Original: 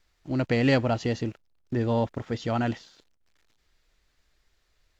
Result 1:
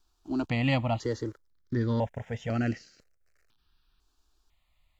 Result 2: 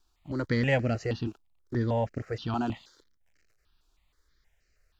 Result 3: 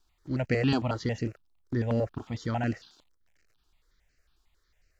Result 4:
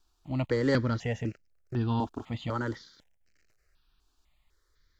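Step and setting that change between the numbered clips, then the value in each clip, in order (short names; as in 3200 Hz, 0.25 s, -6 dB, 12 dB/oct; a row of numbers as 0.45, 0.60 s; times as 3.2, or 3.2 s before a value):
step phaser, rate: 2, 6.3, 11, 4 Hz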